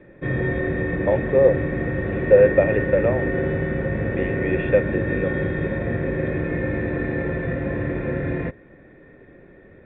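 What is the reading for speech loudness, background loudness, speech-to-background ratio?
−21.0 LKFS, −24.5 LKFS, 3.5 dB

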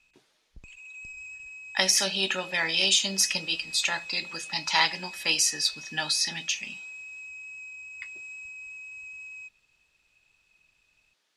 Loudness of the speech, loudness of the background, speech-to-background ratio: −25.0 LKFS, −40.0 LKFS, 15.0 dB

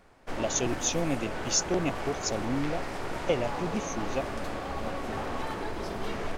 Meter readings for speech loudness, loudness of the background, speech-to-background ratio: −31.5 LKFS, −35.5 LKFS, 4.0 dB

